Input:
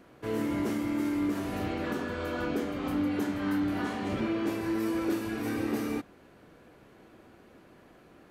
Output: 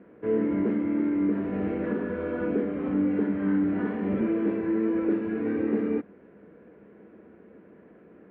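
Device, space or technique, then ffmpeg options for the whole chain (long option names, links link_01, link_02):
bass cabinet: -af "highpass=74,equalizer=frequency=120:width_type=q:width=4:gain=-7,equalizer=frequency=200:width_type=q:width=4:gain=10,equalizer=frequency=310:width_type=q:width=4:gain=3,equalizer=frequency=450:width_type=q:width=4:gain=9,equalizer=frequency=790:width_type=q:width=4:gain=-5,equalizer=frequency=1200:width_type=q:width=4:gain=-5,lowpass=frequency=2100:width=0.5412,lowpass=frequency=2100:width=1.3066"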